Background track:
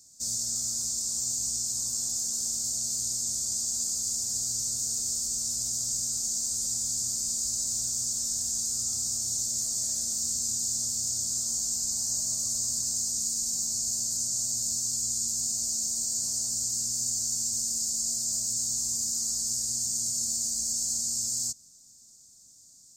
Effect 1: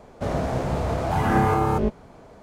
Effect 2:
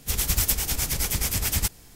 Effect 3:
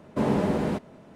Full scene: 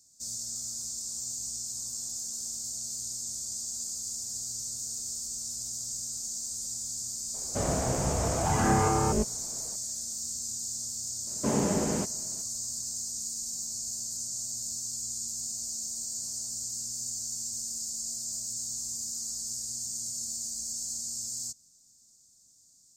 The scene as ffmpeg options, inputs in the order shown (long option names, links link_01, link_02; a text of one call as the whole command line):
ffmpeg -i bed.wav -i cue0.wav -i cue1.wav -i cue2.wav -filter_complex "[0:a]volume=-6dB[link_01];[1:a]acontrast=80,atrim=end=2.42,asetpts=PTS-STARTPTS,volume=-11dB,afade=type=in:duration=0.004:curve=hsin,afade=type=out:start_time=2.416:duration=0.004:curve=hsin,adelay=7340[link_02];[3:a]atrim=end=1.15,asetpts=PTS-STARTPTS,volume=-3.5dB,afade=type=in:duration=0.004:curve=hsin,afade=type=out:start_time=1.146:duration=0.004:curve=hsin,adelay=11270[link_03];[link_01][link_02][link_03]amix=inputs=3:normalize=0" out.wav